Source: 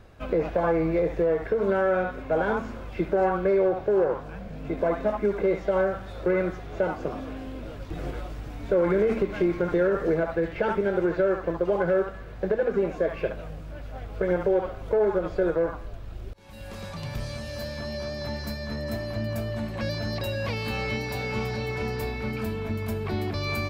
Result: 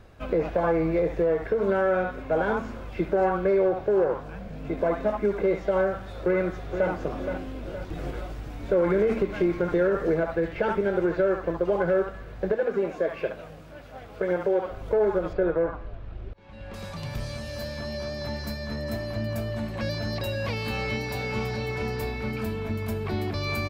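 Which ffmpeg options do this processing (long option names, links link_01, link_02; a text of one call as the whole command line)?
ffmpeg -i in.wav -filter_complex "[0:a]asplit=2[link_01][link_02];[link_02]afade=type=in:start_time=6.06:duration=0.01,afade=type=out:start_time=6.9:duration=0.01,aecho=0:1:470|940|1410|1880|2350|2820:0.398107|0.199054|0.0995268|0.0497634|0.0248817|0.0124408[link_03];[link_01][link_03]amix=inputs=2:normalize=0,asettb=1/sr,asplit=3[link_04][link_05][link_06];[link_04]atrim=end=12.534[link_07];[link_05]atrim=start=12.53:end=14.7,asetpts=PTS-STARTPTS,afade=type=in:duration=0.004:curve=qsin,afade=type=out:start_time=2.166:duration=0.004:curve=qsin,highpass=frequency=230:poles=1[link_08];[link_06]atrim=start=14.696[link_09];[link_07][link_08]acrossfade=duration=0.004:curve1=hsin:curve2=qsin[link_10];[link_10][link_09]acrossfade=duration=0.004:curve1=qsin:curve2=hsin,asettb=1/sr,asplit=3[link_11][link_12][link_13];[link_11]atrim=end=15.334[link_14];[link_12]atrim=start=15.33:end=16.74,asetpts=PTS-STARTPTS,afade=type=in:duration=0.004:curve=qsin,afade=type=out:start_time=1.406:duration=0.004:curve=qsin,lowpass=2900[link_15];[link_13]atrim=start=16.736[link_16];[link_14][link_15]acrossfade=duration=0.004:curve1=hsin:curve2=qsin[link_17];[link_17][link_16]acrossfade=duration=0.004:curve1=qsin:curve2=hsin" out.wav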